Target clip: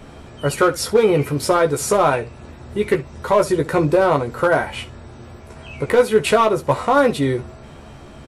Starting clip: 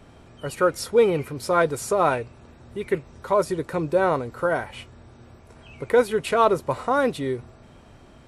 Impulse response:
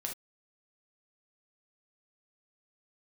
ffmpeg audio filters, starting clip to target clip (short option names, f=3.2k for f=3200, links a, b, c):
-filter_complex "[0:a]alimiter=limit=-14dB:level=0:latency=1:release=328,volume=17dB,asoftclip=hard,volume=-17dB,asplit=2[a][b];[b]aecho=0:1:14|67:0.562|0.133[c];[a][c]amix=inputs=2:normalize=0,volume=8.5dB"